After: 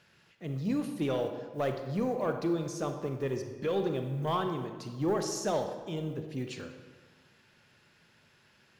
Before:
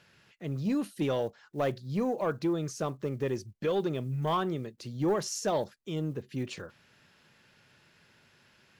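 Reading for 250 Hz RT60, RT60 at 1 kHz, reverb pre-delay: 1.5 s, 1.5 s, 30 ms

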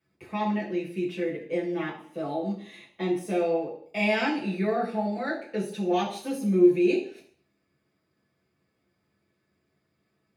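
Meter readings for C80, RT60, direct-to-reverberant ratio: 11.5 dB, 0.55 s, -6.5 dB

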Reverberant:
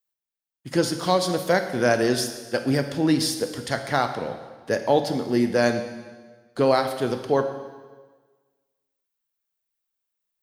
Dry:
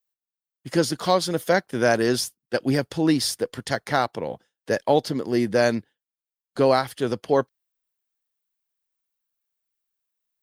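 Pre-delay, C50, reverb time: 7 ms, 8.5 dB, 1.4 s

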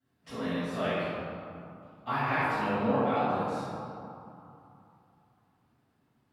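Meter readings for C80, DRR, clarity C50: -2.5 dB, -17.5 dB, -5.5 dB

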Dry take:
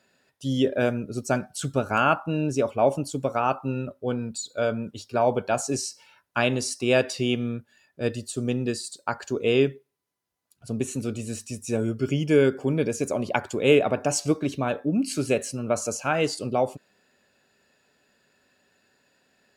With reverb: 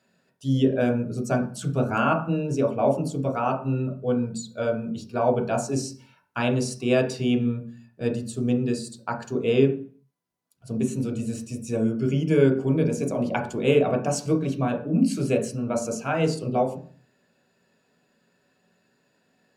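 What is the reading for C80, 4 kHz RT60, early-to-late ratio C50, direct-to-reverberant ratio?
15.0 dB, 0.40 s, 11.0 dB, 1.5 dB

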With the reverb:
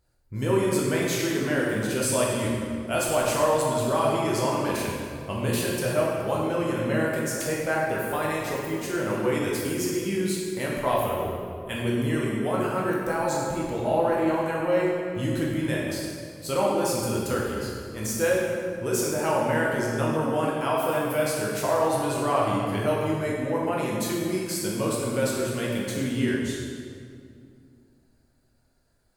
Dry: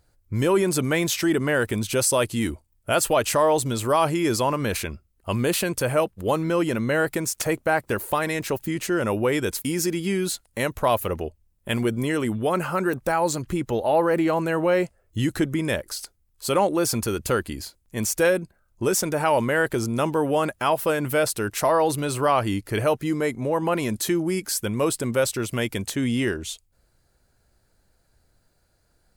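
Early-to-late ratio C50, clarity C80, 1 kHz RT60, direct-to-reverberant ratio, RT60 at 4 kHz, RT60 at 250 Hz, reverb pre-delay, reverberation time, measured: -0.5 dB, 1.0 dB, 2.1 s, -5.0 dB, 1.6 s, 2.9 s, 8 ms, 2.3 s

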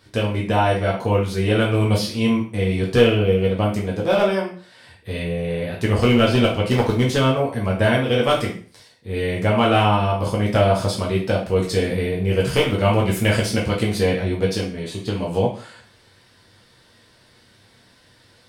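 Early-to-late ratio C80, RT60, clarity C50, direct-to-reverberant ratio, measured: 12.0 dB, 0.45 s, 6.5 dB, -4.0 dB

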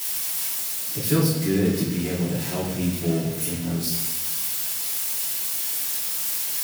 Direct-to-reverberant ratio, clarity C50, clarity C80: -11.5 dB, 3.0 dB, 6.0 dB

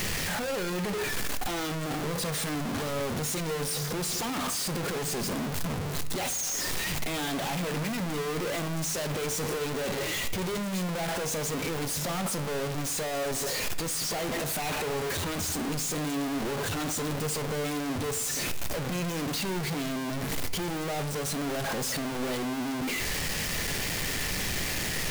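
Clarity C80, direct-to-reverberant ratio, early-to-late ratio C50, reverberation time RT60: 17.0 dB, 10.0 dB, 14.0 dB, 0.85 s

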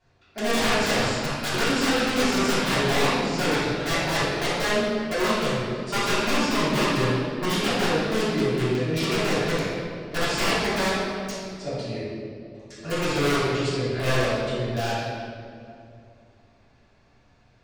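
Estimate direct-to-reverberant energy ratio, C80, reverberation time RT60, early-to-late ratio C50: -14.0 dB, -0.5 dB, 2.5 s, -3.5 dB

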